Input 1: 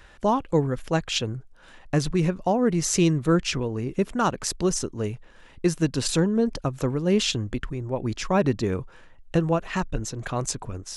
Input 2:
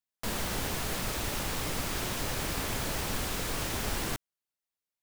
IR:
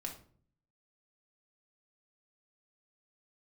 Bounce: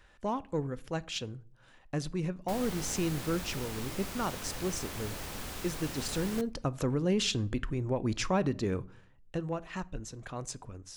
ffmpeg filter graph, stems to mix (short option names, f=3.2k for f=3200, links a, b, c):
-filter_complex "[0:a]asoftclip=type=tanh:threshold=-10.5dB,volume=-1dB,afade=t=in:st=6.43:d=0.51:silence=0.298538,afade=t=out:st=8.39:d=0.58:silence=0.266073,asplit=2[a][b];[b]volume=-12dB[c];[1:a]adelay=2250,volume=-9dB,asplit=2[d][e];[e]volume=-11.5dB[f];[2:a]atrim=start_sample=2205[g];[c][f]amix=inputs=2:normalize=0[h];[h][g]afir=irnorm=-1:irlink=0[i];[a][d][i]amix=inputs=3:normalize=0,alimiter=limit=-20.5dB:level=0:latency=1:release=272"